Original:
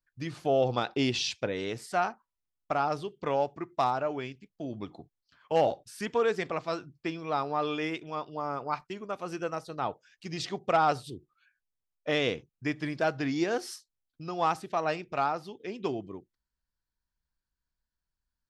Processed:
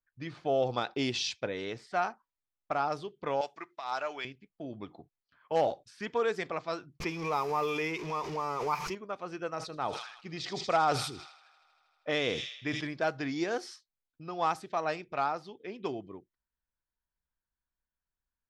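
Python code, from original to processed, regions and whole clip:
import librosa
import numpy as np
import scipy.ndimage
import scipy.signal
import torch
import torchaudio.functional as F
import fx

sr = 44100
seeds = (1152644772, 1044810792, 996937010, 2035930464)

y = fx.chain(x, sr, fx.highpass(hz=1000.0, slope=6),
    fx.high_shelf(hz=2100.0, db=10.0),
    fx.over_compress(threshold_db=-31.0, ratio=-0.5), at=(3.41, 4.25))
y = fx.chain(y, sr, fx.zero_step(step_db=-40.5),
    fx.ripple_eq(per_octave=0.8, db=8),
    fx.pre_swell(db_per_s=45.0), at=(7.0, 8.95))
y = fx.chain(y, sr, fx.echo_wet_highpass(ms=79, feedback_pct=83, hz=4000.0, wet_db=-7.5),
    fx.sustainer(db_per_s=68.0), at=(9.55, 12.87))
y = fx.low_shelf(y, sr, hz=350.0, db=-4.5)
y = fx.notch(y, sr, hz=2800.0, q=20.0)
y = fx.env_lowpass(y, sr, base_hz=2300.0, full_db=-24.5)
y = y * 10.0 ** (-1.5 / 20.0)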